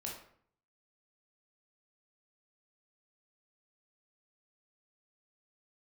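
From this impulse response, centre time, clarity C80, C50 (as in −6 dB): 37 ms, 8.5 dB, 4.0 dB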